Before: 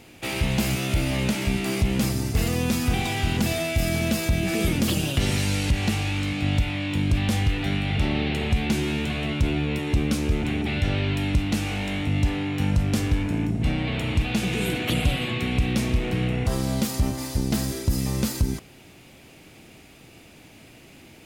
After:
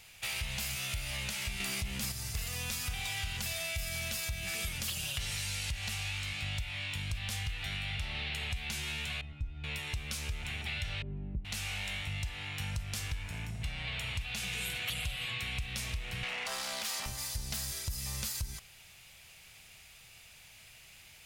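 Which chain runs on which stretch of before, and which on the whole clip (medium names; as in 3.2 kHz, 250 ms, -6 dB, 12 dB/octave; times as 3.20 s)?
1.60–2.12 s: peaking EQ 250 Hz +9.5 dB 0.79 oct + level flattener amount 50%
9.21–9.64 s: tilt EQ -4.5 dB/octave + feedback comb 280 Hz, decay 0.19 s, harmonics odd, mix 90%
11.02–11.45 s: resonant low-pass 310 Hz, resonance Q 3 + comb 5.3 ms, depth 68%
16.23–17.06 s: high-pass 200 Hz 24 dB/octave + overload inside the chain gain 26 dB + overdrive pedal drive 17 dB, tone 2.7 kHz, clips at -15.5 dBFS
whole clip: amplifier tone stack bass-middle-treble 10-0-10; compression, threshold -33 dBFS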